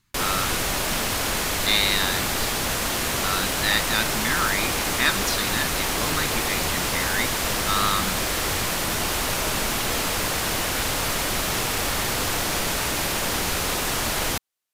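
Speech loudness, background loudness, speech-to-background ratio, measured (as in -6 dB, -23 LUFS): -26.5 LUFS, -23.5 LUFS, -3.0 dB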